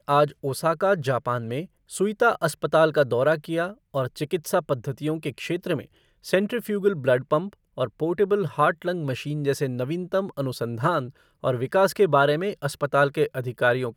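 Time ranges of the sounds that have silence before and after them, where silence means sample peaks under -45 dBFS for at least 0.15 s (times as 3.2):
1.89–3.74
3.94–5.86
6.24–7.54
7.77–11.11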